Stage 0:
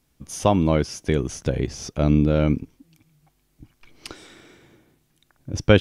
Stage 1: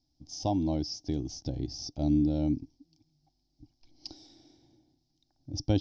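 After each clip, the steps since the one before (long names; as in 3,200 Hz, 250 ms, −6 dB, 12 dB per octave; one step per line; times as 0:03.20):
drawn EQ curve 130 Hz 0 dB, 190 Hz −8 dB, 300 Hz +6 dB, 440 Hz −13 dB, 780 Hz +2 dB, 1,200 Hz −22 dB, 2,600 Hz −15 dB, 5,200 Hz +11 dB, 9,100 Hz −29 dB
level −9 dB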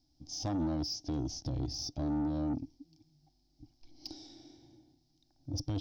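harmonic and percussive parts rebalanced harmonic +6 dB
brickwall limiter −20.5 dBFS, peak gain reduction 10 dB
soft clipping −28 dBFS, distortion −12 dB
level −1 dB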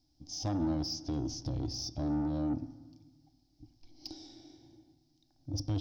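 convolution reverb RT60 1.3 s, pre-delay 4 ms, DRR 12 dB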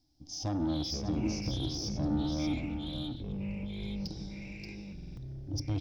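single-tap delay 580 ms −7 dB
delay with pitch and tempo change per echo 254 ms, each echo −7 semitones, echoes 2, each echo −6 dB
buffer that repeats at 0:04.94, samples 2,048, times 4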